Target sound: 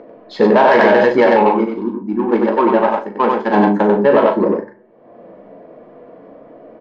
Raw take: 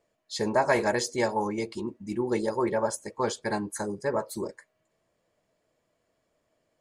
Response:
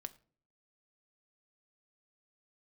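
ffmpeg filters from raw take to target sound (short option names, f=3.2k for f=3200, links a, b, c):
-filter_complex "[0:a]adynamicsmooth=sensitivity=1:basefreq=750,bandreject=f=124.9:t=h:w=4,bandreject=f=249.8:t=h:w=4,bandreject=f=374.7:t=h:w=4,bandreject=f=499.6:t=h:w=4,bandreject=f=624.5:t=h:w=4,bandreject=f=749.4:t=h:w=4,bandreject=f=874.3:t=h:w=4,bandreject=f=999.2:t=h:w=4,bandreject=f=1.1241k:t=h:w=4,bandreject=f=1.249k:t=h:w=4,bandreject=f=1.3739k:t=h:w=4,bandreject=f=1.4988k:t=h:w=4,bandreject=f=1.6237k:t=h:w=4,bandreject=f=1.7486k:t=h:w=4,bandreject=f=1.8735k:t=h:w=4,bandreject=f=1.9984k:t=h:w=4,bandreject=f=2.1233k:t=h:w=4,bandreject=f=2.2482k:t=h:w=4,acompressor=mode=upward:threshold=-45dB:ratio=2.5,asettb=1/sr,asplit=3[a][b][c];[a]atrim=end=1.424[d];[b]atrim=start=1.42:end=3.54,asetpts=PTS-STARTPTS,afade=t=in:d=0.004:c=qsin,afade=t=out:st=2.116:d=0.004:c=qsin,equalizer=f=125:t=o:w=1:g=-11,equalizer=f=500:t=o:w=1:g=-9,equalizer=f=2k:t=o:w=1:g=-6,equalizer=f=4k:t=o:w=1:g=-4,equalizer=f=8k:t=o:w=1:g=-4[e];[c]atrim=start=3.536[f];[d][e]acrossfade=d=0.004:c1=hsin:c2=qsin[g];[g][f]acrossfade=d=0.004:c1=qsin:c2=hsin,aecho=1:1:94:0.668[h];[1:a]atrim=start_sample=2205[i];[h][i]afir=irnorm=-1:irlink=0,flanger=delay=8.3:depth=7:regen=-64:speed=0.4:shape=sinusoidal,acrossover=split=200 5200:gain=0.0794 1 0.141[j][k][l];[j][k][l]amix=inputs=3:normalize=0,asplit=2[m][n];[n]adelay=39,volume=-9dB[o];[m][o]amix=inputs=2:normalize=0,alimiter=level_in=30dB:limit=-1dB:release=50:level=0:latency=1,volume=-1dB"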